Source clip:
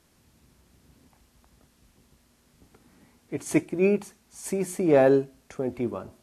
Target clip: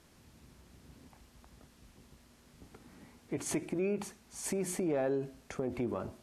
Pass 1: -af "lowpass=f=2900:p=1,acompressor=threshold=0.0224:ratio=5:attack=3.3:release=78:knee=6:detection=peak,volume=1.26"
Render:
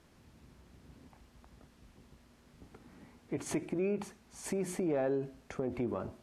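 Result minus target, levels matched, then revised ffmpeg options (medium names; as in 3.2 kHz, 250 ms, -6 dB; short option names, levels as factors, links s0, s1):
8 kHz band -5.0 dB
-af "lowpass=f=7800:p=1,acompressor=threshold=0.0224:ratio=5:attack=3.3:release=78:knee=6:detection=peak,volume=1.26"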